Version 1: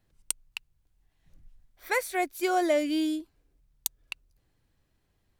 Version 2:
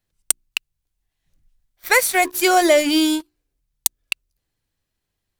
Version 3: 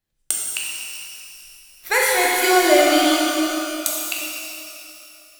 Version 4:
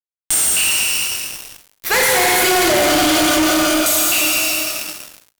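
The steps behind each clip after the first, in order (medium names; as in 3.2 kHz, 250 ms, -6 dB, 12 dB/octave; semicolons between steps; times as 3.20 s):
treble shelf 2.2 kHz +9 dB; hum notches 60/120/180/240/300/360 Hz; waveshaping leveller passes 3; trim -1.5 dB
pitch-shifted reverb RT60 2.7 s, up +12 st, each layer -8 dB, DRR -4.5 dB; trim -5.5 dB
fuzz box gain 35 dB, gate -39 dBFS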